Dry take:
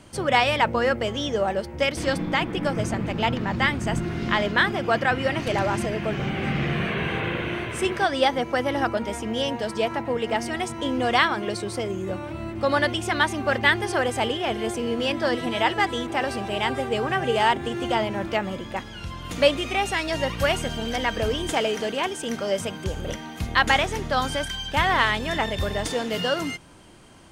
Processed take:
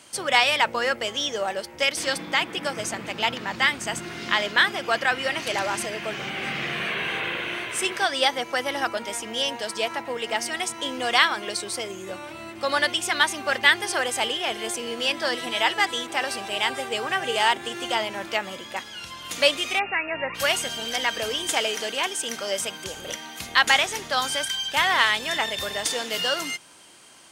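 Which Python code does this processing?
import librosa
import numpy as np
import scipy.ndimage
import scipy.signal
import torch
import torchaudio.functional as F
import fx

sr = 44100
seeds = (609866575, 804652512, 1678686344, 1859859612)

y = fx.brickwall_lowpass(x, sr, high_hz=2800.0, at=(19.78, 20.34), fade=0.02)
y = fx.highpass(y, sr, hz=610.0, slope=6)
y = fx.high_shelf(y, sr, hz=2600.0, db=9.5)
y = y * librosa.db_to_amplitude(-1.0)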